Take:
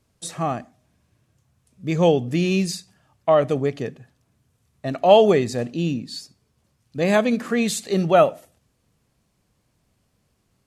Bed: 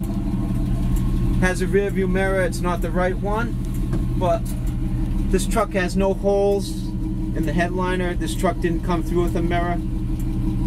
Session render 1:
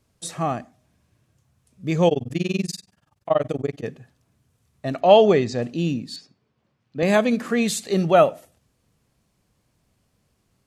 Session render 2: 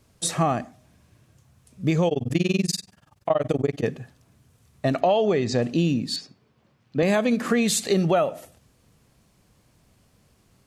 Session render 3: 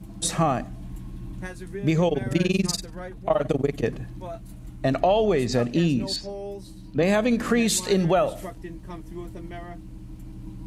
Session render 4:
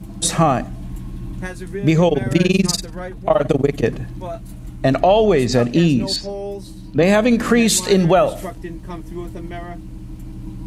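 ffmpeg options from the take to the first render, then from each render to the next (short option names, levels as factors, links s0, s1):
-filter_complex "[0:a]asettb=1/sr,asplit=3[s0][s1][s2];[s0]atrim=end=2.084[s3];[s1]atrim=start=2.08:end=3.84,asetpts=PTS-STARTPTS,afade=t=in:d=0.004:c=qsin,afade=t=out:st=1.756:d=0.004:c=qsin,tremolo=f=21:d=1[s4];[s2]atrim=start=3.836[s5];[s3][s4]acrossfade=d=0.004:c1=hsin:c2=qsin[s6];[s6][s5]acrossfade=d=0.004:c1=qsin:c2=hsin,asplit=3[s7][s8][s9];[s7]afade=t=out:st=5:d=0.02[s10];[s8]lowpass=f=6500:w=0.5412,lowpass=f=6500:w=1.3066,afade=t=in:st=5:d=0.02,afade=t=out:st=5.61:d=0.02[s11];[s9]afade=t=in:st=5.61:d=0.02[s12];[s10][s11][s12]amix=inputs=3:normalize=0,asettb=1/sr,asplit=3[s13][s14][s15];[s13]atrim=end=6.164[s16];[s14]atrim=start=6.16:end=7.03,asetpts=PTS-STARTPTS,afade=t=in:d=0.004:c=qsin,afade=t=out:st=0.866:d=0.004:c=qsin,highpass=140,lowpass=3200[s17];[s15]atrim=start=7.026[s18];[s16][s17]acrossfade=d=0.004:c1=hsin:c2=qsin[s19];[s19][s18]acrossfade=d=0.004:c1=qsin:c2=hsin"
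-filter_complex "[0:a]asplit=2[s0][s1];[s1]alimiter=limit=0.211:level=0:latency=1:release=87,volume=1.26[s2];[s0][s2]amix=inputs=2:normalize=0,acompressor=threshold=0.126:ratio=6"
-filter_complex "[1:a]volume=0.15[s0];[0:a][s0]amix=inputs=2:normalize=0"
-af "volume=2.24,alimiter=limit=0.794:level=0:latency=1"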